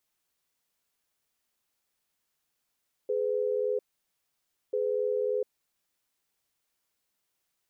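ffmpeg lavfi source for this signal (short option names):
-f lavfi -i "aevalsrc='0.0376*(sin(2*PI*420*t)+sin(2*PI*503*t))*clip(min(mod(t,1.64),0.7-mod(t,1.64))/0.005,0,1)':d=2.94:s=44100"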